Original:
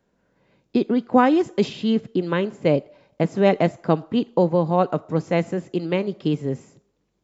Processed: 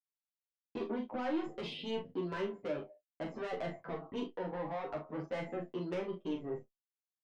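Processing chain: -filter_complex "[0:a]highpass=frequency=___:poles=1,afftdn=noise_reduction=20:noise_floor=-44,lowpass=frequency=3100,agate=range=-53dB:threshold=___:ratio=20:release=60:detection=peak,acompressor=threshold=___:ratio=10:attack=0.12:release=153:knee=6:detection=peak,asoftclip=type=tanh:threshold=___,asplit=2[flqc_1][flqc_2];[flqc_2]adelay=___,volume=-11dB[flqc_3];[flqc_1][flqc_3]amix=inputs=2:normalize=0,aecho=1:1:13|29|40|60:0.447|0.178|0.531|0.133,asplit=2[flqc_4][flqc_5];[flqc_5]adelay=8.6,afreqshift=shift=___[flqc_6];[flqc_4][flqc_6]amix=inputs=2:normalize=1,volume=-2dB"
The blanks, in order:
560, -52dB, -22dB, -28dB, 28, 0.51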